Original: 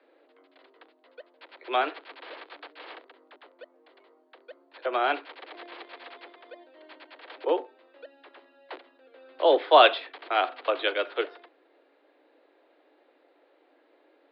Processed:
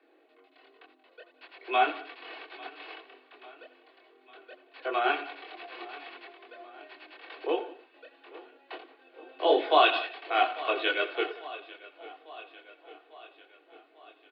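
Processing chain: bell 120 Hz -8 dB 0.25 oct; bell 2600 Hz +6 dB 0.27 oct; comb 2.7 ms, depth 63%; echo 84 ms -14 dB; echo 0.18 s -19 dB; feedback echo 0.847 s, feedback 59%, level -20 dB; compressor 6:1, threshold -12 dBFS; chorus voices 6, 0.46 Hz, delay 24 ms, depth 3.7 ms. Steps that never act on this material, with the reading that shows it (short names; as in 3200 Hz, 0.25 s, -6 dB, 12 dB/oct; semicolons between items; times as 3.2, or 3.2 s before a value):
bell 120 Hz: input band starts at 240 Hz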